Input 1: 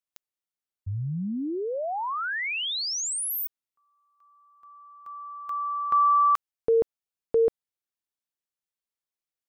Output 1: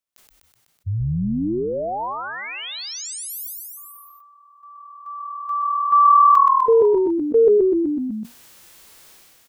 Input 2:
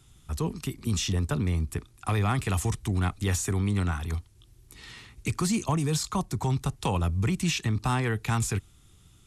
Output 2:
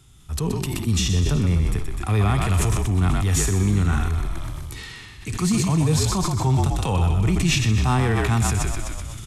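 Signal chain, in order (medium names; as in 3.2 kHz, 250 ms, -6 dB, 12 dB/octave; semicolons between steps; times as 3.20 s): frequency-shifting echo 125 ms, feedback 53%, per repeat -40 Hz, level -7 dB; harmonic-percussive split percussive -10 dB; decay stretcher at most 22 dB/s; trim +7 dB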